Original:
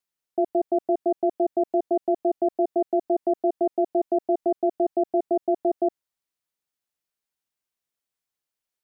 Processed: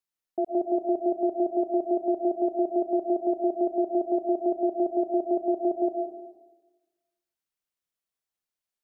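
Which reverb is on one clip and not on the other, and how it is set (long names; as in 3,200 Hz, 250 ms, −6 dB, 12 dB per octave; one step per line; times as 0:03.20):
comb and all-pass reverb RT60 1.2 s, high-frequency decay 0.75×, pre-delay 85 ms, DRR 4.5 dB
level −4.5 dB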